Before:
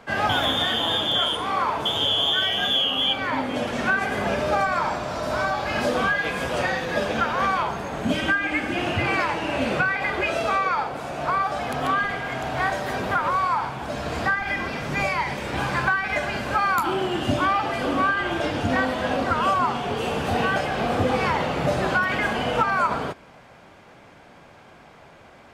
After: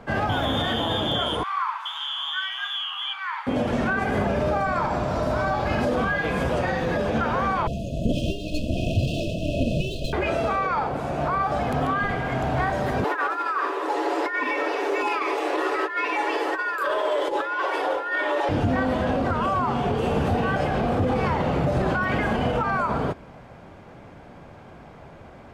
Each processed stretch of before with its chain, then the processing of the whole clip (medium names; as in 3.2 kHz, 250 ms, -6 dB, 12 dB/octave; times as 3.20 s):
1.43–3.47 s: steep high-pass 1 kHz 48 dB/octave + treble shelf 3.9 kHz -10.5 dB
7.67–10.13 s: comb filter that takes the minimum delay 1.2 ms + brick-wall FIR band-stop 700–2500 Hz
13.04–18.49 s: frequency shift +250 Hz + compressor with a negative ratio -24 dBFS, ratio -0.5 + comb 7 ms, depth 46%
whole clip: tilt shelf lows +5 dB, about 1.3 kHz; peak limiter -16 dBFS; bass shelf 130 Hz +6.5 dB